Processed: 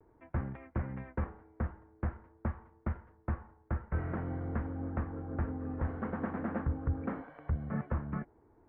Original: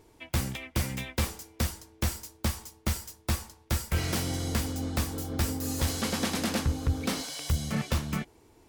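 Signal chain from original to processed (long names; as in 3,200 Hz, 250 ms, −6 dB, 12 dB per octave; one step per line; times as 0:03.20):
Butterworth low-pass 1,700 Hz 36 dB per octave
pitch vibrato 0.46 Hz 30 cents
level −5 dB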